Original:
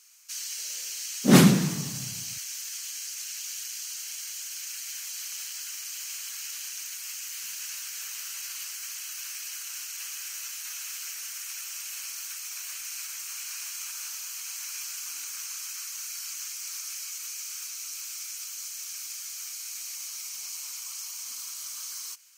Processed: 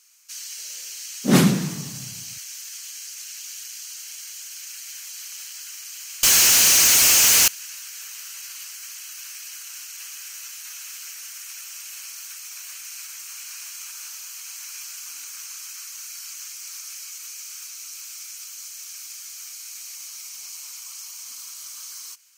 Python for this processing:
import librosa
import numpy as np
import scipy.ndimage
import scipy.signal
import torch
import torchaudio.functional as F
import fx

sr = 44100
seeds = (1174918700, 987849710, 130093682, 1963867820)

y = fx.fuzz(x, sr, gain_db=47.0, gate_db=-55.0, at=(6.23, 7.48))